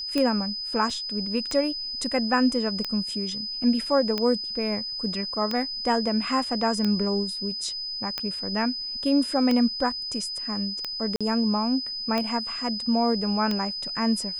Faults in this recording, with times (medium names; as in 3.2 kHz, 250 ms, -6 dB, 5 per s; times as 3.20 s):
tick 45 rpm -13 dBFS
whine 5 kHz -30 dBFS
0.90 s: dropout 2.2 ms
11.16–11.21 s: dropout 46 ms